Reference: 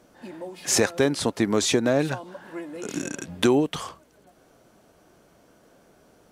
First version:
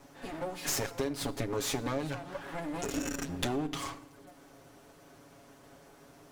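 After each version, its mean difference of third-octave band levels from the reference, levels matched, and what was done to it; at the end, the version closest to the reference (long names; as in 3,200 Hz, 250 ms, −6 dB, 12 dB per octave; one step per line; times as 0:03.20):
9.5 dB: lower of the sound and its delayed copy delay 7.2 ms
downward compressor 5 to 1, threshold −34 dBFS, peak gain reduction 16 dB
feedback delay network reverb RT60 1 s, low-frequency decay 1.45×, high-frequency decay 0.7×, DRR 13.5 dB
level +2.5 dB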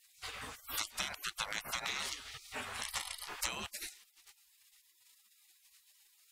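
16.0 dB: gate on every frequency bin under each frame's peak −30 dB weak
high-shelf EQ 7,500 Hz −8 dB
downward compressor 6 to 1, threshold −50 dBFS, peak gain reduction 13.5 dB
level +15 dB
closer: first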